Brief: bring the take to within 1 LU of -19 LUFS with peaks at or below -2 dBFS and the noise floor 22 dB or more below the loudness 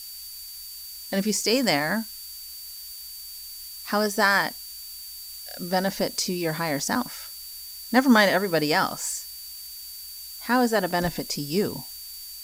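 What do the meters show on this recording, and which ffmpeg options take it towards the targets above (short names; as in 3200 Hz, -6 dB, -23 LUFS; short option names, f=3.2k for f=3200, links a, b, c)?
steady tone 4600 Hz; tone level -41 dBFS; noise floor -40 dBFS; noise floor target -47 dBFS; loudness -24.5 LUFS; peak -5.5 dBFS; loudness target -19.0 LUFS
-> -af "bandreject=f=4.6k:w=30"
-af "afftdn=nr=7:nf=-40"
-af "volume=5.5dB,alimiter=limit=-2dB:level=0:latency=1"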